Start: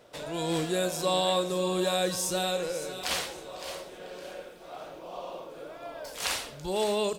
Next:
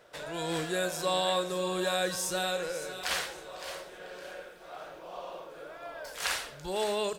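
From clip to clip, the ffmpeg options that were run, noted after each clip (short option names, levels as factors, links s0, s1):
-af "equalizer=f=100:t=o:w=0.67:g=-5,equalizer=f=250:t=o:w=0.67:g=-6,equalizer=f=1600:t=o:w=0.67:g=7,volume=0.75"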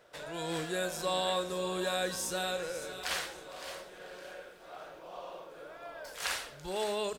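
-filter_complex "[0:a]asplit=4[s0][s1][s2][s3];[s1]adelay=455,afreqshift=-120,volume=0.106[s4];[s2]adelay=910,afreqshift=-240,volume=0.0372[s5];[s3]adelay=1365,afreqshift=-360,volume=0.013[s6];[s0][s4][s5][s6]amix=inputs=4:normalize=0,volume=0.708"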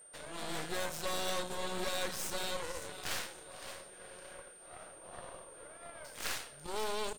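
-af "aeval=exprs='0.119*(cos(1*acos(clip(val(0)/0.119,-1,1)))-cos(1*PI/2))+0.0266*(cos(6*acos(clip(val(0)/0.119,-1,1)))-cos(6*PI/2))+0.0473*(cos(8*acos(clip(val(0)/0.119,-1,1)))-cos(8*PI/2))':c=same,aeval=exprs='val(0)+0.00398*sin(2*PI*8800*n/s)':c=same,volume=0.501"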